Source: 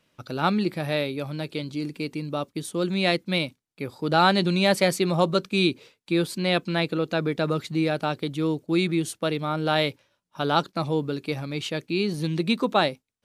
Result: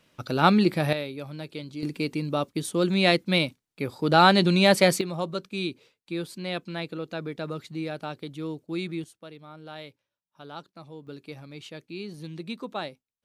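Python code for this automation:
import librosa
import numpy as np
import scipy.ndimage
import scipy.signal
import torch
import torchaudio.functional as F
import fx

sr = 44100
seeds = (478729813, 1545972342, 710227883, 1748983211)

y = fx.gain(x, sr, db=fx.steps((0.0, 4.0), (0.93, -6.0), (1.83, 2.0), (5.01, -8.5), (9.04, -18.5), (11.07, -12.0)))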